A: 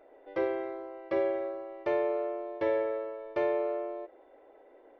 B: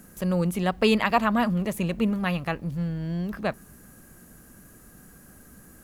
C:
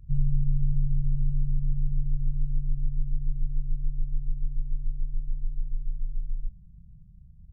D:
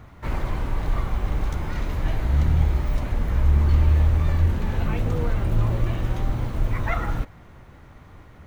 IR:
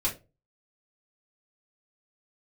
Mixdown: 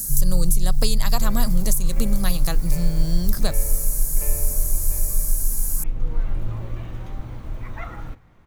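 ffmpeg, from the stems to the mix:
-filter_complex "[0:a]equalizer=f=2.5k:t=o:w=0.59:g=13.5,adelay=850,volume=-13.5dB,asplit=2[a][b];[b]volume=-6.5dB[c];[1:a]lowshelf=f=160:g=7,aexciter=amount=13.9:drive=6.8:freq=4.1k,acompressor=threshold=-23dB:ratio=10,volume=0.5dB,asplit=2[d][e];[2:a]volume=0.5dB,asplit=2[f][g];[g]volume=-16dB[h];[3:a]adelay=900,volume=-9.5dB,asplit=2[i][j];[j]volume=-19dB[k];[e]apad=whole_len=413146[l];[i][l]sidechaincompress=threshold=-35dB:ratio=8:attack=36:release=623[m];[4:a]atrim=start_sample=2205[n];[h][k]amix=inputs=2:normalize=0[o];[o][n]afir=irnorm=-1:irlink=0[p];[c]aecho=0:1:698:1[q];[a][d][f][m][p][q]amix=inputs=6:normalize=0"

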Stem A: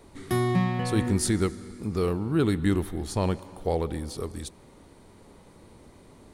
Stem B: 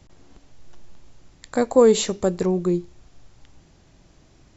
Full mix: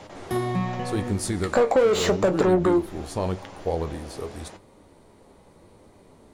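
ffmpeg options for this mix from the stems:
-filter_complex "[0:a]volume=1.5dB[a];[1:a]asplit=2[b][c];[c]highpass=f=720:p=1,volume=30dB,asoftclip=type=tanh:threshold=-3.5dB[d];[b][d]amix=inputs=2:normalize=0,lowpass=f=1.7k:p=1,volume=-6dB,volume=-1dB[e];[a][e]amix=inputs=2:normalize=0,equalizer=f=610:w=0.97:g=5,flanger=delay=9.5:depth=6:regen=58:speed=0.85:shape=sinusoidal,acompressor=threshold=-19dB:ratio=2.5"

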